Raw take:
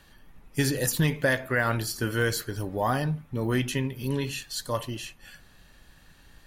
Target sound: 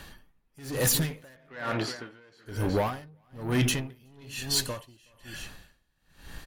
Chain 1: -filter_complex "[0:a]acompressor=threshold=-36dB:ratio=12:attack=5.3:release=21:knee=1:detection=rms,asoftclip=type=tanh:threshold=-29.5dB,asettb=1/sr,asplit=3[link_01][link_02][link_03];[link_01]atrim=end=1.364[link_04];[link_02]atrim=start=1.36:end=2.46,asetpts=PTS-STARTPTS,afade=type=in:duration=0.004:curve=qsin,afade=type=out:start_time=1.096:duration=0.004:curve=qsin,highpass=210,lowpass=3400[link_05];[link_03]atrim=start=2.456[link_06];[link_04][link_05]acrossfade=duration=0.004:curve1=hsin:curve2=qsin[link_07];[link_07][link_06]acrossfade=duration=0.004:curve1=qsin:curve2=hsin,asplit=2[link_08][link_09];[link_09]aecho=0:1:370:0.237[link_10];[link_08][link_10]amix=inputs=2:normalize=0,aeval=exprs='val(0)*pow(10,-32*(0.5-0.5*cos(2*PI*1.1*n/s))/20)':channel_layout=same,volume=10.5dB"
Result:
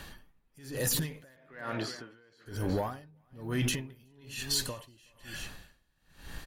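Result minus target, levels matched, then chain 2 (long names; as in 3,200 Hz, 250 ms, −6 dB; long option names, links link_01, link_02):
downward compressor: peak gain reduction +10.5 dB
-filter_complex "[0:a]acompressor=threshold=-24.5dB:ratio=12:attack=5.3:release=21:knee=1:detection=rms,asoftclip=type=tanh:threshold=-29.5dB,asettb=1/sr,asplit=3[link_01][link_02][link_03];[link_01]atrim=end=1.364[link_04];[link_02]atrim=start=1.36:end=2.46,asetpts=PTS-STARTPTS,afade=type=in:duration=0.004:curve=qsin,afade=type=out:start_time=1.096:duration=0.004:curve=qsin,highpass=210,lowpass=3400[link_05];[link_03]atrim=start=2.456[link_06];[link_04][link_05]acrossfade=duration=0.004:curve1=hsin:curve2=qsin[link_07];[link_07][link_06]acrossfade=duration=0.004:curve1=qsin:curve2=hsin,asplit=2[link_08][link_09];[link_09]aecho=0:1:370:0.237[link_10];[link_08][link_10]amix=inputs=2:normalize=0,aeval=exprs='val(0)*pow(10,-32*(0.5-0.5*cos(2*PI*1.1*n/s))/20)':channel_layout=same,volume=10.5dB"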